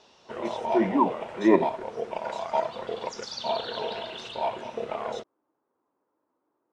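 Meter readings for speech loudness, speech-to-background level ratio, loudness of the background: -24.5 LUFS, 8.0 dB, -32.5 LUFS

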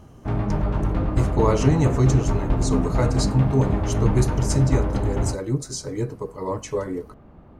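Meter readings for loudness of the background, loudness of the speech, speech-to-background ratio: -24.5 LUFS, -24.5 LUFS, 0.0 dB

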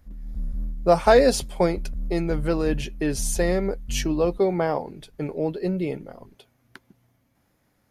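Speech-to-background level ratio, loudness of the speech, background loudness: 11.0 dB, -24.0 LUFS, -35.0 LUFS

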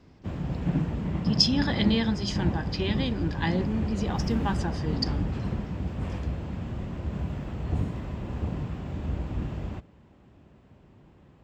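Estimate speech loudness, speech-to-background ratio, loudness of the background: -28.5 LUFS, 3.0 dB, -31.5 LUFS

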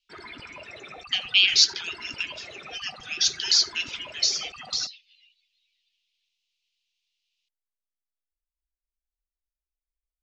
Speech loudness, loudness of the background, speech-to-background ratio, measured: -22.5 LUFS, -41.5 LUFS, 19.0 dB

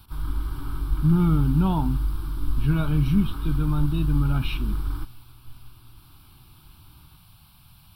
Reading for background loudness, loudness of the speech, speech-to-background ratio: -30.5 LUFS, -24.5 LUFS, 6.0 dB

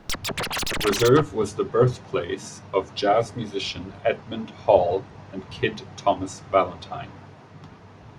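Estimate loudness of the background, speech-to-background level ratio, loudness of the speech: -27.5 LUFS, 3.5 dB, -24.0 LUFS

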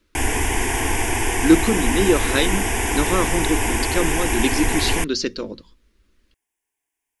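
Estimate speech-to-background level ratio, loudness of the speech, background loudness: -0.5 dB, -22.5 LUFS, -22.0 LUFS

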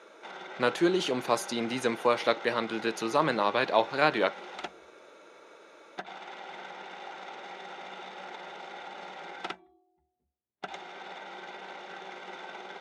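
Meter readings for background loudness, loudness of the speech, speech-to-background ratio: -42.5 LUFS, -28.0 LUFS, 14.5 dB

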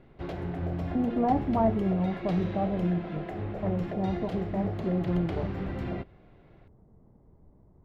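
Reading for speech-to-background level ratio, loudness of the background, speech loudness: 5.5 dB, -35.5 LUFS, -30.0 LUFS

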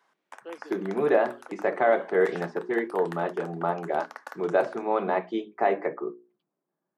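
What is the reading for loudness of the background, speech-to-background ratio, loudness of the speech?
-44.0 LUFS, 16.5 dB, -27.5 LUFS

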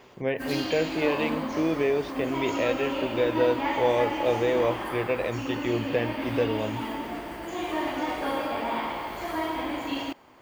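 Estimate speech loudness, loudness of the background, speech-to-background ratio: -28.0 LUFS, -31.0 LUFS, 3.0 dB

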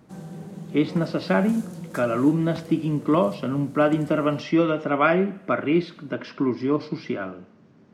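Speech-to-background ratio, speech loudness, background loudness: 16.5 dB, -23.5 LUFS, -40.0 LUFS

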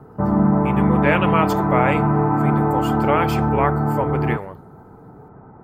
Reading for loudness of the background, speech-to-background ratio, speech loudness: -19.0 LUFS, -5.0 dB, -24.0 LUFS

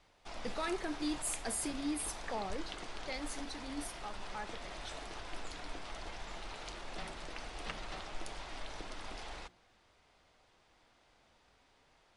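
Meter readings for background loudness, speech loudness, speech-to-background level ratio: -46.0 LUFS, -40.5 LUFS, 5.5 dB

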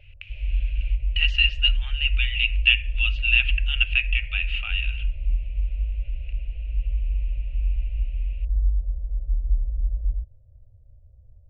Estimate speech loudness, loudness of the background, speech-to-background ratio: -22.5 LUFS, -29.0 LUFS, 6.5 dB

